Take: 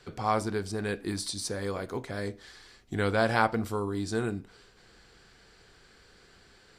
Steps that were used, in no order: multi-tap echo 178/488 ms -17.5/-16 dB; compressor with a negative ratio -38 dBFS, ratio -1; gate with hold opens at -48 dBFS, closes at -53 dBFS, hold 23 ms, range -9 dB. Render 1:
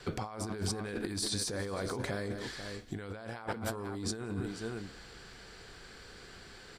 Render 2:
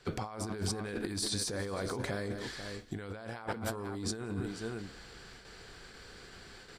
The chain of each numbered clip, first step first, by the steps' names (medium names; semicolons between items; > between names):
multi-tap echo > compressor with a negative ratio > gate with hold; gate with hold > multi-tap echo > compressor with a negative ratio